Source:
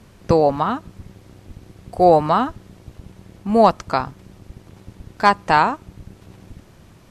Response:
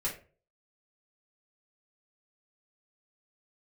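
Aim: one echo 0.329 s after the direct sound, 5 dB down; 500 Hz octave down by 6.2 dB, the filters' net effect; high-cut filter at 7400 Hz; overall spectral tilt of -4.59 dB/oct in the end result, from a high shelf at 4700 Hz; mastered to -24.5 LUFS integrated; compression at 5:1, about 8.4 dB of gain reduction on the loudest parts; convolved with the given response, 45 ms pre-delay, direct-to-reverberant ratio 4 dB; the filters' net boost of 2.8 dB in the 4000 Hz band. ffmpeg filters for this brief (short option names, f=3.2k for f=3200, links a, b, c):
-filter_complex "[0:a]lowpass=7.4k,equalizer=f=500:t=o:g=-8,equalizer=f=4k:t=o:g=7.5,highshelf=f=4.7k:g=-8,acompressor=threshold=-20dB:ratio=5,aecho=1:1:329:0.562,asplit=2[a][b];[1:a]atrim=start_sample=2205,adelay=45[c];[b][c]afir=irnorm=-1:irlink=0,volume=-8dB[d];[a][d]amix=inputs=2:normalize=0,volume=1dB"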